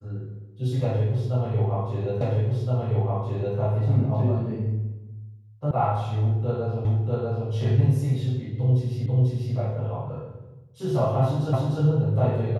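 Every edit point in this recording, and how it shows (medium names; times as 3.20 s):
2.21 s: repeat of the last 1.37 s
5.71 s: sound stops dead
6.85 s: repeat of the last 0.64 s
9.06 s: repeat of the last 0.49 s
11.53 s: repeat of the last 0.3 s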